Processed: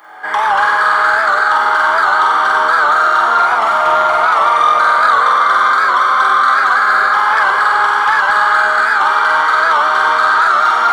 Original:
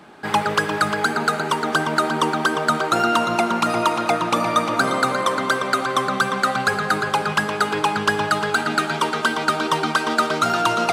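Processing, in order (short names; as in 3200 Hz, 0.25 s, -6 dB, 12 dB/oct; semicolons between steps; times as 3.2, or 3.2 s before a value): polynomial smoothing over 41 samples; tilt +3.5 dB/oct; on a send: flutter echo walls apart 8 m, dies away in 1.1 s; on the sum: reverb RT60 4.0 s, pre-delay 5 ms, DRR -6.5 dB; in parallel at +2 dB: compressor, threshold -22 dBFS, peak gain reduction 15.5 dB; on the sum: HPF 740 Hz 12 dB/oct; soft clip -3 dBFS, distortion -19 dB; record warp 78 rpm, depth 100 cents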